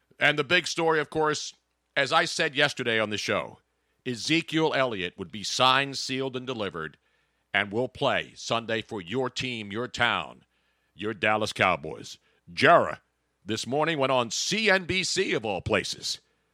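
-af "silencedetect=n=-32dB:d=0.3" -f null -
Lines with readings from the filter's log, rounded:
silence_start: 1.49
silence_end: 1.97 | silence_duration: 0.47
silence_start: 3.49
silence_end: 4.06 | silence_duration: 0.57
silence_start: 6.87
silence_end: 7.54 | silence_duration: 0.67
silence_start: 10.32
silence_end: 11.01 | silence_duration: 0.68
silence_start: 12.13
silence_end: 12.58 | silence_duration: 0.45
silence_start: 12.94
silence_end: 13.49 | silence_duration: 0.56
silence_start: 16.15
silence_end: 16.54 | silence_duration: 0.39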